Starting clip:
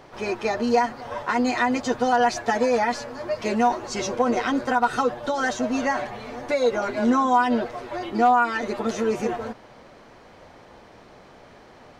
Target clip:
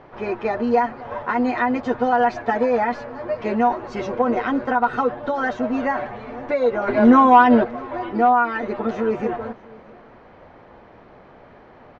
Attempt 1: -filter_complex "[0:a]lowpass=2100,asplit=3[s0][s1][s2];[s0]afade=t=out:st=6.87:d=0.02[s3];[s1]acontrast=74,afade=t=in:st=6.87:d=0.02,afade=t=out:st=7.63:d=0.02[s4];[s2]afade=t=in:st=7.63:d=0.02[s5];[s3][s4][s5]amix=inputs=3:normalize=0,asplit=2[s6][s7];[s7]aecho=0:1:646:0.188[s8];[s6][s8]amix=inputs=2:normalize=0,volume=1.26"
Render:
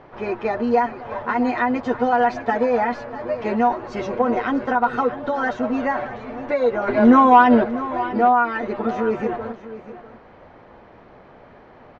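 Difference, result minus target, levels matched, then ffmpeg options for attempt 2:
echo-to-direct +9.5 dB
-filter_complex "[0:a]lowpass=2100,asplit=3[s0][s1][s2];[s0]afade=t=out:st=6.87:d=0.02[s3];[s1]acontrast=74,afade=t=in:st=6.87:d=0.02,afade=t=out:st=7.63:d=0.02[s4];[s2]afade=t=in:st=7.63:d=0.02[s5];[s3][s4][s5]amix=inputs=3:normalize=0,asplit=2[s6][s7];[s7]aecho=0:1:646:0.0631[s8];[s6][s8]amix=inputs=2:normalize=0,volume=1.26"

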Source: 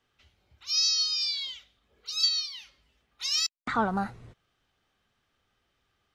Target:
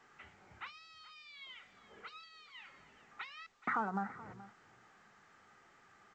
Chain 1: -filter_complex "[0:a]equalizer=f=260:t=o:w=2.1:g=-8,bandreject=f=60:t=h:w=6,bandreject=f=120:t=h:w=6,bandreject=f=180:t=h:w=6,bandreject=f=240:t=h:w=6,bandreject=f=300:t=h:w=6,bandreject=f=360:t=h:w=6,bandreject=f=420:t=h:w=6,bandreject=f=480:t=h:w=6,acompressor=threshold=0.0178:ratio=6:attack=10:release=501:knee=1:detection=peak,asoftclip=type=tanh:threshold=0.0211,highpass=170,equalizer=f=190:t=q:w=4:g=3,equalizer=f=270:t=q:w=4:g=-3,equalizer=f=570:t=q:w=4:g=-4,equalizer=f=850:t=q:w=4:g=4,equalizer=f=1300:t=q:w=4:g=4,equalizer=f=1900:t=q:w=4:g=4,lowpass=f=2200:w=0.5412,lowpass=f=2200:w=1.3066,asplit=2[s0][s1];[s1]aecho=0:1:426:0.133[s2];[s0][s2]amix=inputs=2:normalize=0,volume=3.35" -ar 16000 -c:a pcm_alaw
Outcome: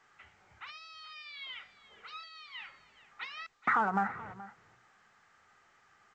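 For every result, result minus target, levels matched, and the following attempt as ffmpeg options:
compression: peak gain reduction -9 dB; 250 Hz band -4.0 dB
-filter_complex "[0:a]equalizer=f=260:t=o:w=2.1:g=-8,bandreject=f=60:t=h:w=6,bandreject=f=120:t=h:w=6,bandreject=f=180:t=h:w=6,bandreject=f=240:t=h:w=6,bandreject=f=300:t=h:w=6,bandreject=f=360:t=h:w=6,bandreject=f=420:t=h:w=6,bandreject=f=480:t=h:w=6,acompressor=threshold=0.00501:ratio=6:attack=10:release=501:knee=1:detection=peak,asoftclip=type=tanh:threshold=0.0211,highpass=170,equalizer=f=190:t=q:w=4:g=3,equalizer=f=270:t=q:w=4:g=-3,equalizer=f=570:t=q:w=4:g=-4,equalizer=f=850:t=q:w=4:g=4,equalizer=f=1300:t=q:w=4:g=4,equalizer=f=1900:t=q:w=4:g=4,lowpass=f=2200:w=0.5412,lowpass=f=2200:w=1.3066,asplit=2[s0][s1];[s1]aecho=0:1:426:0.133[s2];[s0][s2]amix=inputs=2:normalize=0,volume=3.35" -ar 16000 -c:a pcm_alaw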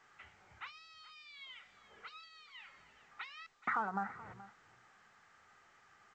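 250 Hz band -4.5 dB
-filter_complex "[0:a]bandreject=f=60:t=h:w=6,bandreject=f=120:t=h:w=6,bandreject=f=180:t=h:w=6,bandreject=f=240:t=h:w=6,bandreject=f=300:t=h:w=6,bandreject=f=360:t=h:w=6,bandreject=f=420:t=h:w=6,bandreject=f=480:t=h:w=6,acompressor=threshold=0.00501:ratio=6:attack=10:release=501:knee=1:detection=peak,asoftclip=type=tanh:threshold=0.0211,highpass=170,equalizer=f=190:t=q:w=4:g=3,equalizer=f=270:t=q:w=4:g=-3,equalizer=f=570:t=q:w=4:g=-4,equalizer=f=850:t=q:w=4:g=4,equalizer=f=1300:t=q:w=4:g=4,equalizer=f=1900:t=q:w=4:g=4,lowpass=f=2200:w=0.5412,lowpass=f=2200:w=1.3066,asplit=2[s0][s1];[s1]aecho=0:1:426:0.133[s2];[s0][s2]amix=inputs=2:normalize=0,volume=3.35" -ar 16000 -c:a pcm_alaw

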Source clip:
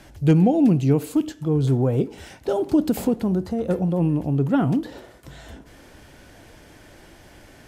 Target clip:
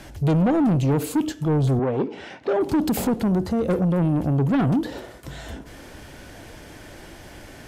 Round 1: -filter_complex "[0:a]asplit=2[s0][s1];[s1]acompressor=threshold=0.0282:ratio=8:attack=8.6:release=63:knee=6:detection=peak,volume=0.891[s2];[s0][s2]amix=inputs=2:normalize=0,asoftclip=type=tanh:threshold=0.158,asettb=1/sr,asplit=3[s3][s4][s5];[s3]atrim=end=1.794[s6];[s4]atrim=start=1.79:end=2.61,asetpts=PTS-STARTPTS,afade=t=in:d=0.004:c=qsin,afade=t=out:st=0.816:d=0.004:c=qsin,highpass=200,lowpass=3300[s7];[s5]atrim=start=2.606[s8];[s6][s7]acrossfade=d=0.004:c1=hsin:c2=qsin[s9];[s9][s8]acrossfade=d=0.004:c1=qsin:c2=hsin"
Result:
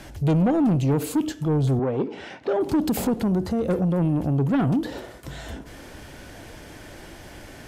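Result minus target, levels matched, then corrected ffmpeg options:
compression: peak gain reduction +10.5 dB
-filter_complex "[0:a]asplit=2[s0][s1];[s1]acompressor=threshold=0.112:ratio=8:attack=8.6:release=63:knee=6:detection=peak,volume=0.891[s2];[s0][s2]amix=inputs=2:normalize=0,asoftclip=type=tanh:threshold=0.158,asettb=1/sr,asplit=3[s3][s4][s5];[s3]atrim=end=1.794[s6];[s4]atrim=start=1.79:end=2.61,asetpts=PTS-STARTPTS,afade=t=in:d=0.004:c=qsin,afade=t=out:st=0.816:d=0.004:c=qsin,highpass=200,lowpass=3300[s7];[s5]atrim=start=2.606[s8];[s6][s7]acrossfade=d=0.004:c1=hsin:c2=qsin[s9];[s9][s8]acrossfade=d=0.004:c1=qsin:c2=hsin"

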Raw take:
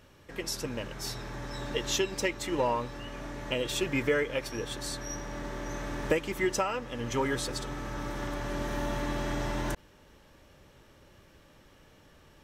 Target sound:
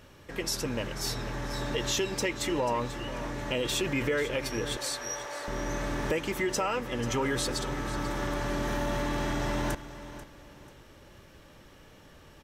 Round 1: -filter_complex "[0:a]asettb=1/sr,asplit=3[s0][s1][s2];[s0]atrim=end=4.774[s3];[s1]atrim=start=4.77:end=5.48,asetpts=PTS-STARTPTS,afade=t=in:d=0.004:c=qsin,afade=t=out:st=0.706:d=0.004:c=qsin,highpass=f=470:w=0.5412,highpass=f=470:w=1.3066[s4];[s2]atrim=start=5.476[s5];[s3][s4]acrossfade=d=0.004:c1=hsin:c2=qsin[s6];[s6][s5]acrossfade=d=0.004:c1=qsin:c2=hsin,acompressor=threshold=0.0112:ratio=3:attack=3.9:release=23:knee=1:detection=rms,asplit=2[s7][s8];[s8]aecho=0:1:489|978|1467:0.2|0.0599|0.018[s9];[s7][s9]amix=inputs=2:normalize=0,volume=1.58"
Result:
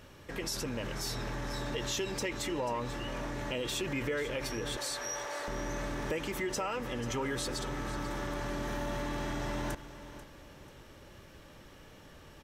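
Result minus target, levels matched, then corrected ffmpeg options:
compression: peak gain reduction +5.5 dB
-filter_complex "[0:a]asettb=1/sr,asplit=3[s0][s1][s2];[s0]atrim=end=4.774[s3];[s1]atrim=start=4.77:end=5.48,asetpts=PTS-STARTPTS,afade=t=in:d=0.004:c=qsin,afade=t=out:st=0.706:d=0.004:c=qsin,highpass=f=470:w=0.5412,highpass=f=470:w=1.3066[s4];[s2]atrim=start=5.476[s5];[s3][s4]acrossfade=d=0.004:c1=hsin:c2=qsin[s6];[s6][s5]acrossfade=d=0.004:c1=qsin:c2=hsin,acompressor=threshold=0.0282:ratio=3:attack=3.9:release=23:knee=1:detection=rms,asplit=2[s7][s8];[s8]aecho=0:1:489|978|1467:0.2|0.0599|0.018[s9];[s7][s9]amix=inputs=2:normalize=0,volume=1.58"

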